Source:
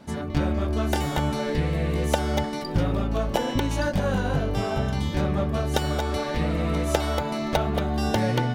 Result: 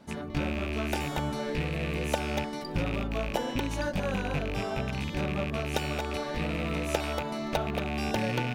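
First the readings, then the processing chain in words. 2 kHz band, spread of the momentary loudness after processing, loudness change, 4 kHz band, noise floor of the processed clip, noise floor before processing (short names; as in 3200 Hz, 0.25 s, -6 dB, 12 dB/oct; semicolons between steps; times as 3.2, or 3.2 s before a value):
-1.5 dB, 2 LU, -6.0 dB, -4.0 dB, -37 dBFS, -31 dBFS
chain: rattling part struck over -25 dBFS, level -19 dBFS; bell 88 Hz -5 dB 0.85 oct; gain -5.5 dB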